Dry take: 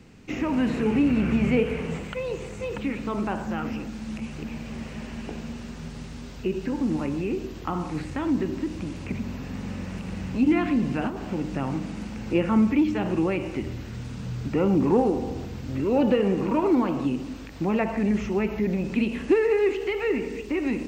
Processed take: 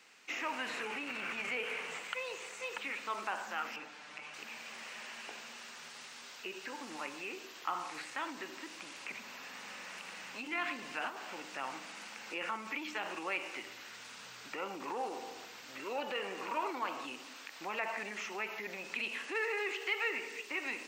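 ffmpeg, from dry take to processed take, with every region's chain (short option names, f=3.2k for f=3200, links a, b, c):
-filter_complex "[0:a]asettb=1/sr,asplit=3[a][b][c];[a]atrim=end=3.764[d];[b]atrim=start=3.76:end=4.34,asetpts=PTS-STARTPTS,afade=t=in:d=0.004:c=qsin,afade=t=out:st=0.576:d=0.004:c=qsin,lowpass=f=1.9k:p=1,aecho=1:1:6.7:0.88,atrim=end_sample=25578[e];[c]atrim=start=4.336[f];[d][e]acrossfade=d=0.004:c1=hsin:c2=qsin[g];[g][f]acrossfade=d=0.004:c1=qsin:c2=hsin,alimiter=limit=-17.5dB:level=0:latency=1:release=11,highpass=1.1k"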